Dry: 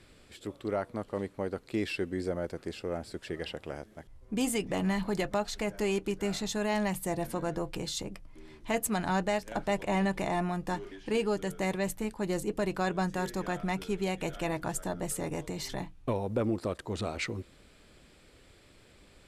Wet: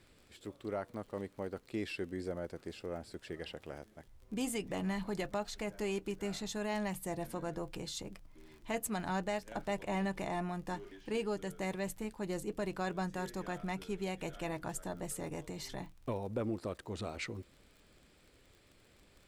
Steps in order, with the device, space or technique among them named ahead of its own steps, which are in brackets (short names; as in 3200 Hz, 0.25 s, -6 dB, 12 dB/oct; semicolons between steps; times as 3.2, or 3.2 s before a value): vinyl LP (crackle 40/s -43 dBFS; pink noise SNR 39 dB); gain -6.5 dB